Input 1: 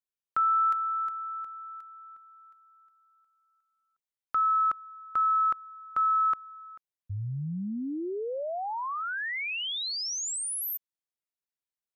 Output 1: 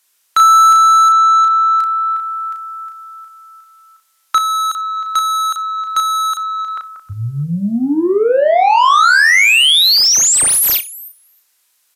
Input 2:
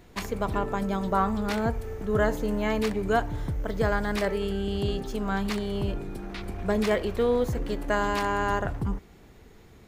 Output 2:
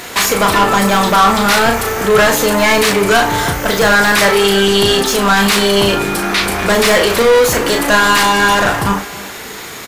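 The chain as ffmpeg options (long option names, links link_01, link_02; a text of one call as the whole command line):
ffmpeg -i in.wav -filter_complex "[0:a]asplit=2[link_01][link_02];[link_02]adelay=313,lowpass=frequency=2700:poles=1,volume=-23.5dB,asplit=2[link_03][link_04];[link_04]adelay=313,lowpass=frequency=2700:poles=1,volume=0.37[link_05];[link_03][link_05]amix=inputs=2:normalize=0[link_06];[link_01][link_06]amix=inputs=2:normalize=0,crystalizer=i=3.5:c=0,equalizer=frequency=1300:width=0.99:gain=4,asplit=2[link_07][link_08];[link_08]highpass=frequency=720:poles=1,volume=29dB,asoftclip=type=tanh:threshold=-7dB[link_09];[link_07][link_09]amix=inputs=2:normalize=0,lowpass=frequency=6100:poles=1,volume=-6dB,asplit=2[link_10][link_11];[link_11]adelay=35,volume=-5dB[link_12];[link_10][link_12]amix=inputs=2:normalize=0,asplit=2[link_13][link_14];[link_14]aecho=0:1:61|122:0.112|0.0202[link_15];[link_13][link_15]amix=inputs=2:normalize=0,volume=3dB" -ar 32000 -c:a libvorbis -b:a 96k out.ogg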